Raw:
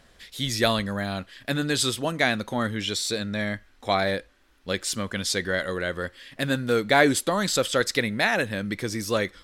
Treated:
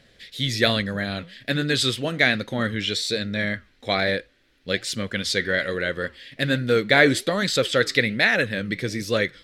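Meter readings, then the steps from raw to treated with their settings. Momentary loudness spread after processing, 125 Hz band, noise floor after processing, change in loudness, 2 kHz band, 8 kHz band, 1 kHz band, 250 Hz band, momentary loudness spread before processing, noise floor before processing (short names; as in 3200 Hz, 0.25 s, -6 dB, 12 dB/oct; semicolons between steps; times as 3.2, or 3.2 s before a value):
9 LU, +3.0 dB, -59 dBFS, +2.5 dB, +4.5 dB, -3.0 dB, -2.5 dB, +1.5 dB, 10 LU, -58 dBFS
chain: dynamic EQ 1400 Hz, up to +5 dB, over -37 dBFS, Q 1.1; flange 1.2 Hz, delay 0.5 ms, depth 8.7 ms, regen -86%; ten-band EQ 125 Hz +9 dB, 250 Hz +4 dB, 500 Hz +8 dB, 1000 Hz -7 dB, 2000 Hz +8 dB, 4000 Hz +8 dB; gain -1 dB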